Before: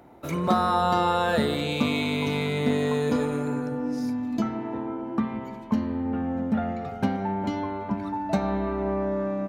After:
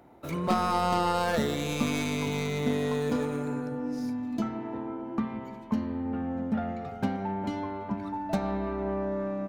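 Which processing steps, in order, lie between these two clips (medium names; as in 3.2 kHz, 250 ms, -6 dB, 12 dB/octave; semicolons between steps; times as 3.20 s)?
tracing distortion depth 0.11 ms; trim -4 dB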